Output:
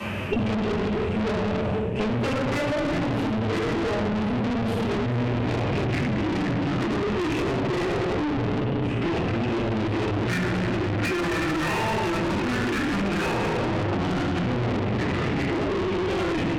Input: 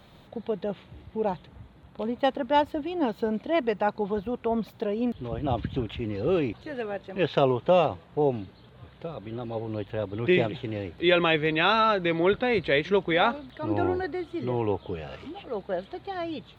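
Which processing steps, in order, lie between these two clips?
sub-octave generator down 1 octave, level −4 dB
noise gate with hold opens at −37 dBFS
high-pass filter 75 Hz 24 dB per octave
high-shelf EQ 2,300 Hz +9 dB
convolution reverb RT60 1.4 s, pre-delay 3 ms, DRR −13 dB
brickwall limiter −1.5 dBFS, peak gain reduction 9 dB
downward compressor 5 to 1, threshold −14 dBFS, peak gain reduction 8 dB
formants moved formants −6 semitones
high-frequency loss of the air 59 metres
tube saturation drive 28 dB, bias 0.45
multiband upward and downward compressor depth 100%
level +4 dB

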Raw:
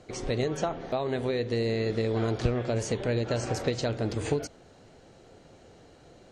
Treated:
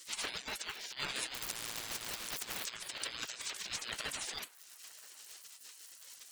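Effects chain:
reverb reduction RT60 0.53 s
surface crackle 470 per second −60 dBFS
gate on every frequency bin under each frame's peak −30 dB weak
high-shelf EQ 2,000 Hz +5.5 dB
compressor whose output falls as the input rises −53 dBFS, ratio −0.5
elliptic high-pass filter 180 Hz
ring modulation 630 Hz
feedback echo with a band-pass in the loop 980 ms, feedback 43%, band-pass 1,100 Hz, level −20 dB
0:01.34–0:02.66: every bin compressed towards the loudest bin 4 to 1
level +16.5 dB

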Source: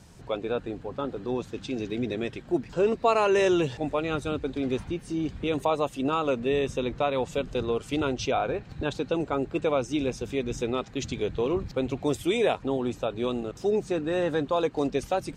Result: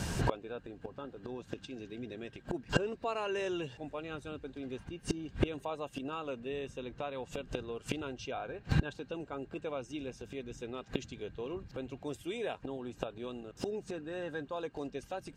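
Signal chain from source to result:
gate with flip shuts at −29 dBFS, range −29 dB
hollow resonant body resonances 1,600/2,800 Hz, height 11 dB
level +15.5 dB

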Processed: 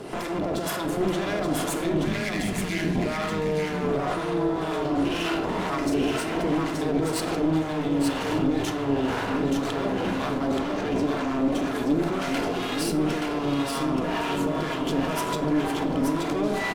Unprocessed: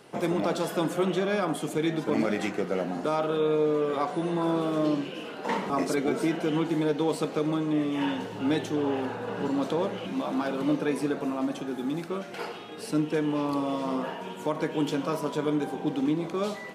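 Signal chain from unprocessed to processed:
0:02.05–0:02.96: time-frequency box erased 240–1,600 Hz
0:10.51–0:11.39: elliptic band-pass filter 190–7,000 Hz
in parallel at +1.5 dB: compressor whose output falls as the input rises −36 dBFS
on the sum: brickwall limiter −20 dBFS, peak gain reduction 7.5 dB
asymmetric clip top −38 dBFS
two-band tremolo in antiphase 2 Hz, depth 70%, crossover 740 Hz
single-tap delay 877 ms −4 dB
on a send at −7 dB: convolution reverb RT60 0.70 s, pre-delay 3 ms
on the sum: level +6.5 dB

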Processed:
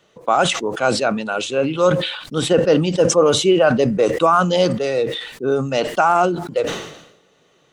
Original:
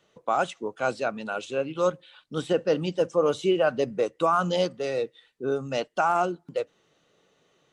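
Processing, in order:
level that may fall only so fast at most 66 dB per second
level +8 dB

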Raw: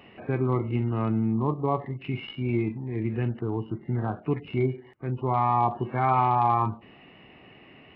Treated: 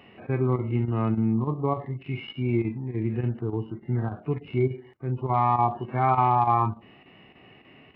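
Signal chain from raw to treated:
square-wave tremolo 3.4 Hz, depth 65%, duty 90%
harmonic and percussive parts rebalanced percussive −8 dB
level +2 dB

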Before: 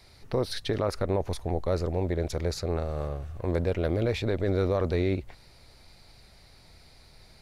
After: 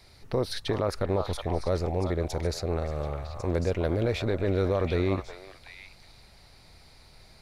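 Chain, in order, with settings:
echo through a band-pass that steps 366 ms, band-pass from 980 Hz, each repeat 1.4 octaves, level −2 dB

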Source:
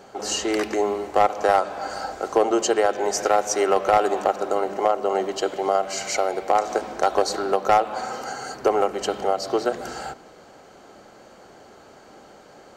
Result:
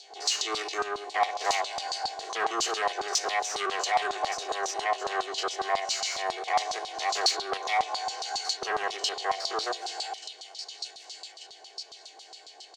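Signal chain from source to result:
spectrum averaged block by block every 50 ms
high-pass filter 150 Hz 24 dB per octave
flat-topped bell 5,700 Hz +9 dB
phaser with its sweep stopped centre 540 Hz, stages 4
comb filter 2.7 ms, depth 70%
on a send: delay with a high-pass on its return 1,187 ms, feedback 40%, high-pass 2,300 Hz, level −7 dB
on the sum: soft clipping −21 dBFS, distortion −9 dB
dynamic equaliser 1,100 Hz, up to +7 dB, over −45 dBFS, Q 2.2
auto-filter band-pass saw down 7.3 Hz 1,000–4,400 Hz
level +8 dB

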